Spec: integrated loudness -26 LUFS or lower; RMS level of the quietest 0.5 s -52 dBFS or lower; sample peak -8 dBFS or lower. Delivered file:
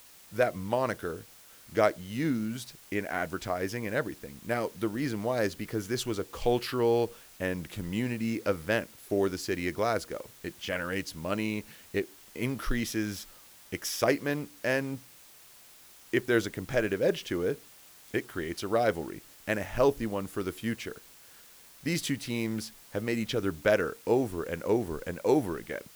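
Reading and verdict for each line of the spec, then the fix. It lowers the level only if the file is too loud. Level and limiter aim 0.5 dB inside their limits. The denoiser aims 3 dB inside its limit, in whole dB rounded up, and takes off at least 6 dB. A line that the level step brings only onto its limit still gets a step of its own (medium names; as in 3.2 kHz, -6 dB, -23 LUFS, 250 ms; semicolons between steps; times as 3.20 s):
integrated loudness -31.0 LUFS: pass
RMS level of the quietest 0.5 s -54 dBFS: pass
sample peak -10.0 dBFS: pass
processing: none needed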